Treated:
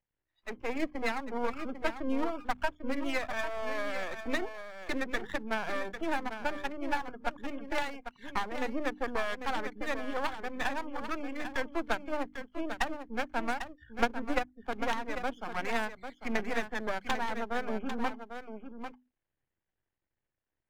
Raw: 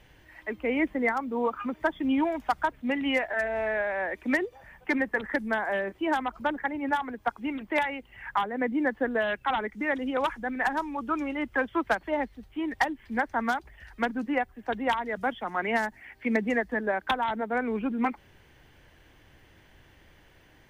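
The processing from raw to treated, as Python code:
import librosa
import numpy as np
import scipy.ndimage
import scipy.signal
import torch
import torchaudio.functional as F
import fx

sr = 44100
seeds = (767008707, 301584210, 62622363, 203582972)

p1 = fx.wiener(x, sr, points=9)
p2 = np.maximum(p1, 0.0)
p3 = fx.hum_notches(p2, sr, base_hz=50, count=6)
p4 = fx.transient(p3, sr, attack_db=6, sustain_db=-4, at=(13.93, 14.56))
p5 = fx.noise_reduce_blind(p4, sr, reduce_db=27)
p6 = p5 + fx.echo_single(p5, sr, ms=797, db=-9.0, dry=0)
y = p6 * librosa.db_to_amplitude(-1.5)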